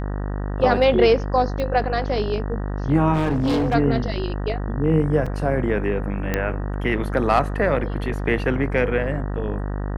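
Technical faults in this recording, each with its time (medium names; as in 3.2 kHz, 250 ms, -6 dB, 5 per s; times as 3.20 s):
buzz 50 Hz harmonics 38 -26 dBFS
1.60 s: pop -16 dBFS
3.13–3.75 s: clipped -17 dBFS
5.26 s: dropout 4.6 ms
6.34 s: pop -8 dBFS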